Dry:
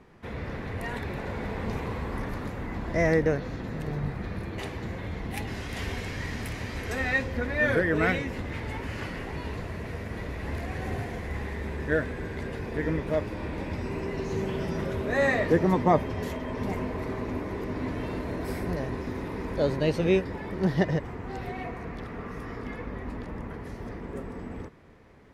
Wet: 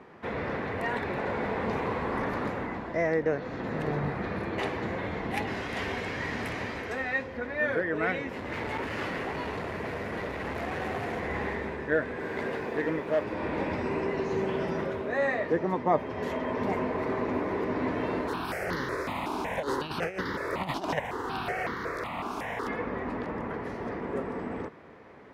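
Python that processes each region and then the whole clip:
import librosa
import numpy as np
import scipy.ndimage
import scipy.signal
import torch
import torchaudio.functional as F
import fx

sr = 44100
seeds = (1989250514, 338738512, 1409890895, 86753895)

y = fx.chain(x, sr, fx.overload_stage(gain_db=33.0),
    fx.high_shelf(hz=9600.0, db=7.5), at=(8.29, 11.2))
y = fx.low_shelf(y, sr, hz=110.0, db=-10.5, at=(12.18, 13.23), fade=0.02)
y = fx.clip_hard(y, sr, threshold_db=-23.0, at=(12.18, 13.23), fade=0.02)
y = fx.dmg_noise_colour(y, sr, seeds[0], colour='pink', level_db=-57.0, at=(12.18, 13.23), fade=0.02)
y = fx.spec_flatten(y, sr, power=0.62, at=(18.27, 22.67), fade=0.02)
y = fx.over_compress(y, sr, threshold_db=-27.0, ratio=-0.5, at=(18.27, 22.67), fade=0.02)
y = fx.phaser_held(y, sr, hz=5.4, low_hz=510.0, high_hz=2500.0, at=(18.27, 22.67), fade=0.02)
y = fx.highpass(y, sr, hz=490.0, slope=6)
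y = fx.rider(y, sr, range_db=5, speed_s=0.5)
y = fx.lowpass(y, sr, hz=1500.0, slope=6)
y = y * 10.0 ** (5.0 / 20.0)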